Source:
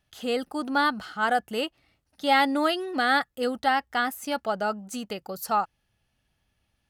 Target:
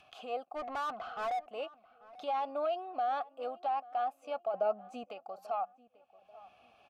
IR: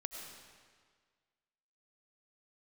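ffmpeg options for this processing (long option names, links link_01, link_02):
-filter_complex "[0:a]aeval=exprs='(tanh(6.31*val(0)+0.3)-tanh(0.3))/6.31':channel_layout=same,asplit=3[link_01][link_02][link_03];[link_01]bandpass=frequency=730:width_type=q:width=8,volume=0dB[link_04];[link_02]bandpass=frequency=1090:width_type=q:width=8,volume=-6dB[link_05];[link_03]bandpass=frequency=2440:width_type=q:width=8,volume=-9dB[link_06];[link_04][link_05][link_06]amix=inputs=3:normalize=0,adynamicequalizer=threshold=0.00501:dfrequency=620:dqfactor=1.5:tfrequency=620:tqfactor=1.5:attack=5:release=100:ratio=0.375:range=3.5:mode=boostabove:tftype=bell,alimiter=level_in=2dB:limit=-24dB:level=0:latency=1:release=63,volume=-2dB,asplit=3[link_07][link_08][link_09];[link_07]afade=type=out:start_time=0.55:duration=0.02[link_10];[link_08]asplit=2[link_11][link_12];[link_12]highpass=frequency=720:poles=1,volume=21dB,asoftclip=type=tanh:threshold=-31dB[link_13];[link_11][link_13]amix=inputs=2:normalize=0,lowpass=frequency=1800:poles=1,volume=-6dB,afade=type=in:start_time=0.55:duration=0.02,afade=type=out:start_time=1.47:duration=0.02[link_14];[link_09]afade=type=in:start_time=1.47:duration=0.02[link_15];[link_10][link_14][link_15]amix=inputs=3:normalize=0,acompressor=mode=upward:threshold=-41dB:ratio=2.5,asettb=1/sr,asplit=3[link_16][link_17][link_18];[link_16]atrim=end=4.544[link_19];[link_17]atrim=start=4.54:end=5.04,asetpts=PTS-STARTPTS,afade=type=in:duration=0.004:curve=qsin,afade=type=out:start_time=0.496:duration=0.004:curve=qsin,lowshelf=frequency=490:gain=11.5[link_20];[link_18]atrim=start=5.036[link_21];[link_19][link_20]acrossfade=duration=0.004:curve1=hsin:curve2=qsin[link_22];[link_22][link_21]acrossfade=duration=0.004:curve1=qsin:curve2=hsin,asplit=2[link_23][link_24];[link_24]adelay=839,lowpass=frequency=1700:poles=1,volume=-19.5dB,asplit=2[link_25][link_26];[link_26]adelay=839,lowpass=frequency=1700:poles=1,volume=0.37,asplit=2[link_27][link_28];[link_28]adelay=839,lowpass=frequency=1700:poles=1,volume=0.37[link_29];[link_23][link_25][link_27][link_29]amix=inputs=4:normalize=0"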